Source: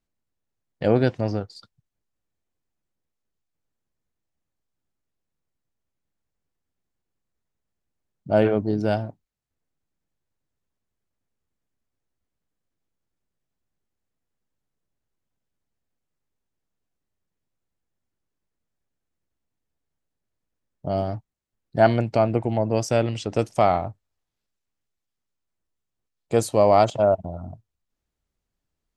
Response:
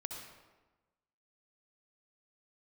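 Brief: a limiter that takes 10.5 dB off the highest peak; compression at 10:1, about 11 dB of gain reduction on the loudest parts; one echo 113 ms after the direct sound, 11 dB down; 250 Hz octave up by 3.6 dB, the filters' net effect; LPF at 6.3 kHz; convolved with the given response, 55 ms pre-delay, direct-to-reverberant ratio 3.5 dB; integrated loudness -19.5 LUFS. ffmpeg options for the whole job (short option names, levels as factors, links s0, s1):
-filter_complex "[0:a]lowpass=6300,equalizer=f=250:t=o:g=4.5,acompressor=threshold=0.0794:ratio=10,alimiter=limit=0.1:level=0:latency=1,aecho=1:1:113:0.282,asplit=2[s0][s1];[1:a]atrim=start_sample=2205,adelay=55[s2];[s1][s2]afir=irnorm=-1:irlink=0,volume=0.75[s3];[s0][s3]amix=inputs=2:normalize=0,volume=3.76"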